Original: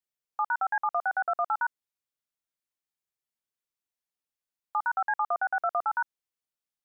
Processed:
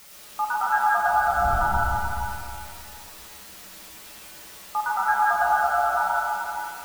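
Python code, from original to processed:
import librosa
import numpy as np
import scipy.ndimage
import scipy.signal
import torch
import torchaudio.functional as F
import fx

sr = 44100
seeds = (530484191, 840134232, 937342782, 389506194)

p1 = fx.law_mismatch(x, sr, coded='mu')
p2 = fx.dmg_wind(p1, sr, seeds[0], corner_hz=100.0, level_db=-31.0, at=(1.11, 1.57), fade=0.02)
p3 = scipy.signal.sosfilt(scipy.signal.butter(4, 1800.0, 'lowpass', fs=sr, output='sos'), p2)
p4 = fx.quant_dither(p3, sr, seeds[1], bits=8, dither='triangular')
p5 = fx.comb_fb(p4, sr, f0_hz=65.0, decay_s=0.16, harmonics='odd', damping=0.0, mix_pct=80)
p6 = p5 + fx.echo_single(p5, sr, ms=306, db=-6.5, dry=0)
p7 = fx.rev_freeverb(p6, sr, rt60_s=2.4, hf_ratio=0.5, predelay_ms=55, drr_db=-4.5)
y = F.gain(torch.from_numpy(p7), 6.5).numpy()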